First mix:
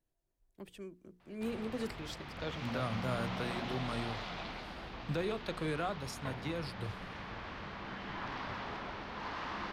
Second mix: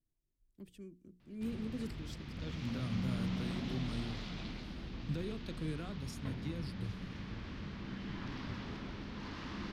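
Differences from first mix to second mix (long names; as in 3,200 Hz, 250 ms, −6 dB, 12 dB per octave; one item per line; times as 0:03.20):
background +5.0 dB
master: add drawn EQ curve 260 Hz 0 dB, 740 Hz −17 dB, 5,400 Hz −5 dB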